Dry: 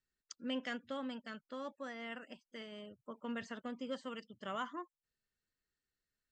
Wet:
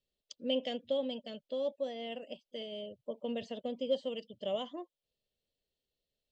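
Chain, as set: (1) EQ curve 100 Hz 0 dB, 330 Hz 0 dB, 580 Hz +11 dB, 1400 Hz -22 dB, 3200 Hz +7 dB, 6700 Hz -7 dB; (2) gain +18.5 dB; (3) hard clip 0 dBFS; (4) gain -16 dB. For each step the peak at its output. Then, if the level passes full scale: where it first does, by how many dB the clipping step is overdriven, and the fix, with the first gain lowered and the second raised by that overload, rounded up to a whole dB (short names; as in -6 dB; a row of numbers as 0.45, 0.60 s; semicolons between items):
-22.5, -4.0, -4.0, -20.0 dBFS; no overload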